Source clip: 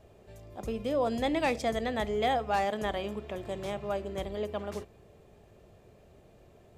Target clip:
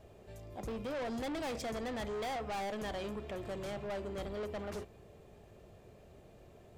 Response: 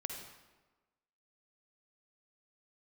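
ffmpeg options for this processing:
-af "asoftclip=type=tanh:threshold=-36dB"

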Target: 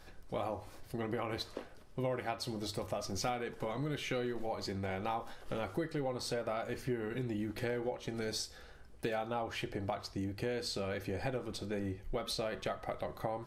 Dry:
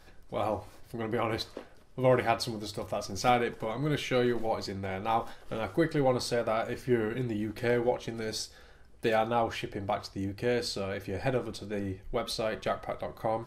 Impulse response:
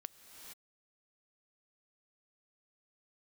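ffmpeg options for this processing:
-af "acompressor=threshold=-34dB:ratio=5"

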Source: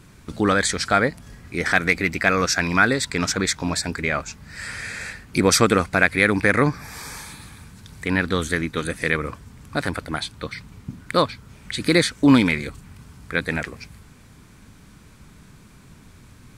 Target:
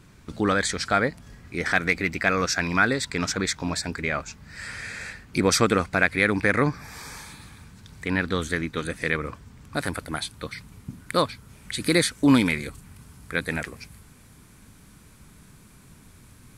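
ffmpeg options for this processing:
-af "asetnsamples=n=441:p=0,asendcmd='9.74 equalizer g 9',equalizer=f=11k:t=o:w=0.8:g=-3.5,volume=-3.5dB"

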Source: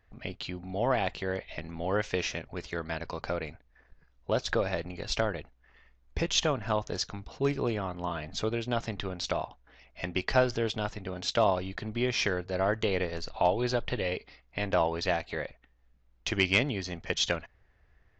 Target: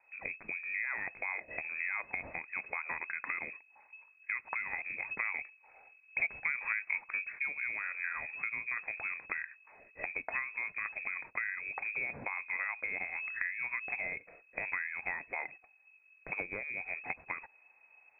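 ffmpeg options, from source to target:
-filter_complex "[0:a]acompressor=threshold=-33dB:ratio=10,asettb=1/sr,asplit=3[a][b][c];[a]atrim=end=5.204[d];[b]atrim=start=5.2:end=7.4,asetpts=PTS-STARTPTS,afade=t=in:d=0.004:c=qsin,afade=t=out:st=2.196:d=0.004:c=qsin,equalizer=f=310:t=o:w=0.8:g=11.5[e];[c]atrim=start=7.396[f];[d][e]acrossfade=d=0.004:c1=hsin:c2=qsin[g];[g][f]acrossfade=d=0.004:c1=qsin:c2=hsin,lowpass=f=2.2k:t=q:w=0.5098,lowpass=f=2.2k:t=q:w=0.6013,lowpass=f=2.2k:t=q:w=0.9,lowpass=f=2.2k:t=q:w=2.563,afreqshift=-2600"

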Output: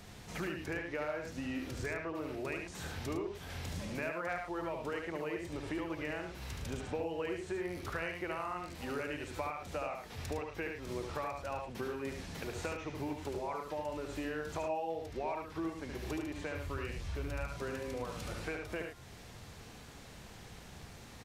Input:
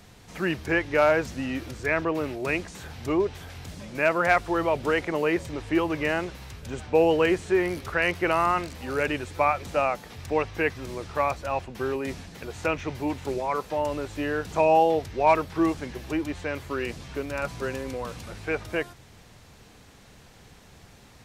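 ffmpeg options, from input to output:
-filter_complex "[0:a]asplit=3[a][b][c];[a]afade=t=out:st=16.54:d=0.02[d];[b]asubboost=boost=4:cutoff=110,afade=t=in:st=16.54:d=0.02,afade=t=out:st=17.45:d=0.02[e];[c]afade=t=in:st=17.45:d=0.02[f];[d][e][f]amix=inputs=3:normalize=0,acompressor=threshold=-36dB:ratio=6,asplit=2[g][h];[h]aecho=0:1:72.89|107.9:0.562|0.355[i];[g][i]amix=inputs=2:normalize=0,volume=-1.5dB"

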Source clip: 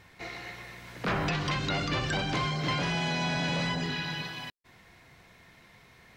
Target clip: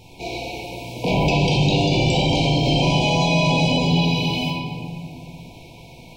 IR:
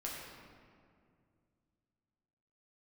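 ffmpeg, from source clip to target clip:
-filter_complex "[1:a]atrim=start_sample=2205[a];[0:a][a]afir=irnorm=-1:irlink=0,afftfilt=real='re*(1-between(b*sr/4096,1000,2200))':imag='im*(1-between(b*sr/4096,1000,2200))':win_size=4096:overlap=0.75,asplit=2[b][c];[c]alimiter=level_in=5dB:limit=-24dB:level=0:latency=1:release=24,volume=-5dB,volume=0dB[d];[b][d]amix=inputs=2:normalize=0,volume=8.5dB"

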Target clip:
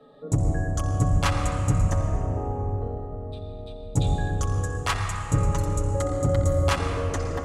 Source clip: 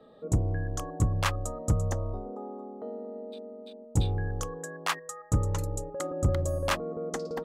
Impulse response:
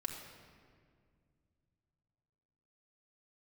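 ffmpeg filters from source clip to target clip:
-filter_complex "[1:a]atrim=start_sample=2205,asetrate=22932,aresample=44100[a];[0:a][a]afir=irnorm=-1:irlink=0"

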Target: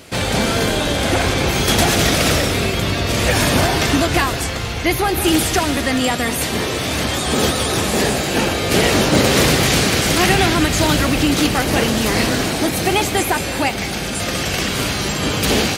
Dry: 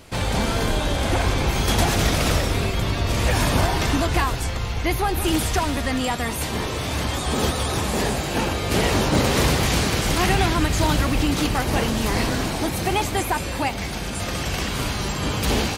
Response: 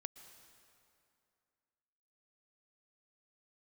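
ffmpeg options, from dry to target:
-filter_complex "[0:a]highpass=f=160:p=1,asplit=2[a][b];[b]equalizer=f=960:w=3:g=-11[c];[1:a]atrim=start_sample=2205[d];[c][d]afir=irnorm=-1:irlink=0,volume=10.5dB[e];[a][e]amix=inputs=2:normalize=0,volume=-2dB"

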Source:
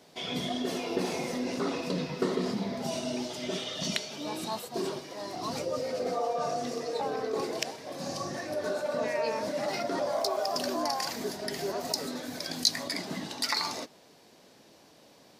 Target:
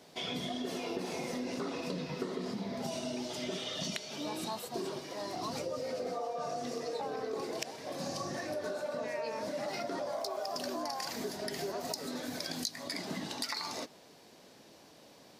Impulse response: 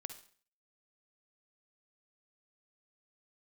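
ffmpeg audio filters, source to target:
-af "acompressor=threshold=-34dB:ratio=6"

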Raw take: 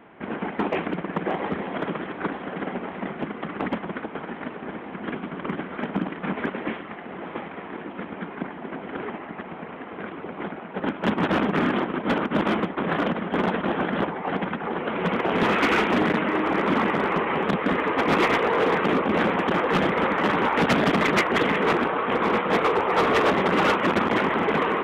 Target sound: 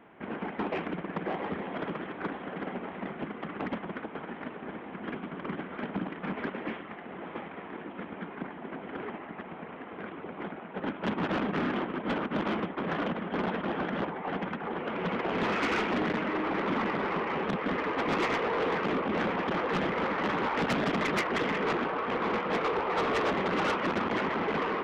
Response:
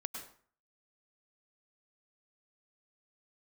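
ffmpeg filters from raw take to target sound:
-af "asoftclip=type=tanh:threshold=-17.5dB,volume=-5.5dB"

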